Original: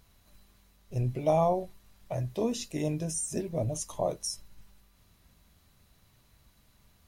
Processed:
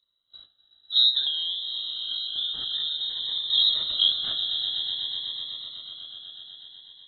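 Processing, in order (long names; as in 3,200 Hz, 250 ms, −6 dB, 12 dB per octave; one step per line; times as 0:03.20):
variable-slope delta modulation 32 kbit/s
Butterworth band-reject 1,400 Hz, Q 1
voice inversion scrambler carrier 3,900 Hz
parametric band 2,700 Hz +7 dB 2.1 octaves
noise gate −50 dBFS, range −23 dB
echo that builds up and dies away 124 ms, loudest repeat 5, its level −13.5 dB
0:01.23–0:03.50: downward compressor 6 to 1, threshold −30 dBFS, peak gain reduction 14 dB
phaser whose notches keep moving one way rising 0.53 Hz
level +3.5 dB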